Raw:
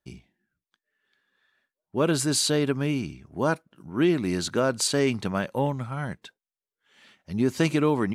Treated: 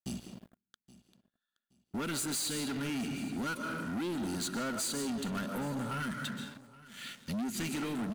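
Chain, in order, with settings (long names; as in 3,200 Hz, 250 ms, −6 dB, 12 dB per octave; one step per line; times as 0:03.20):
high-shelf EQ 6,500 Hz −6.5 dB
notch filter 5,400 Hz, Q 5.1
comb and all-pass reverb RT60 1 s, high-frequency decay 0.55×, pre-delay 100 ms, DRR 9.5 dB
auto-filter notch square 0.25 Hz 730–2,200 Hz
first-order pre-emphasis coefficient 0.9
hollow resonant body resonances 230/1,400 Hz, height 14 dB, ringing for 50 ms
downward compressor 3 to 1, threshold −51 dBFS, peak gain reduction 17.5 dB
leveller curve on the samples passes 5
repeating echo 822 ms, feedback 25%, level −20 dB
level +2 dB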